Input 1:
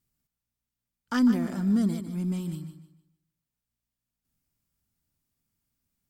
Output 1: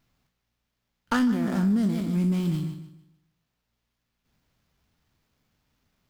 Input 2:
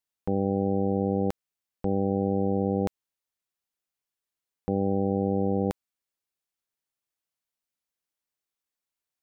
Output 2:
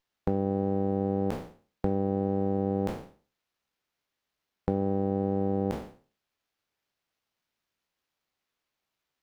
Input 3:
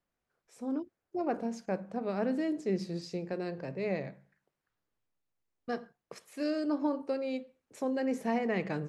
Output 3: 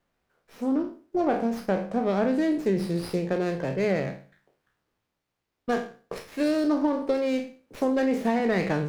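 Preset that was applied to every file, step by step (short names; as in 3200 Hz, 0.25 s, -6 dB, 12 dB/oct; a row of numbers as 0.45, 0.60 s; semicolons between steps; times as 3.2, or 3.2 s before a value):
spectral trails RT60 0.39 s; compressor 6:1, threshold -29 dBFS; running maximum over 5 samples; normalise peaks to -12 dBFS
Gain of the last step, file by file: +8.5, +5.5, +9.5 dB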